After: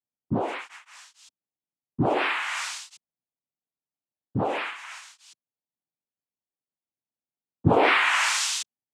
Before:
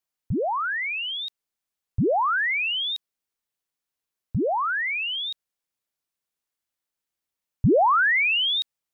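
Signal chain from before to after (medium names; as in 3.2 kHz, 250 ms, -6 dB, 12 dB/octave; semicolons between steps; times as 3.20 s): local Wiener filter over 41 samples; noise-vocoded speech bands 4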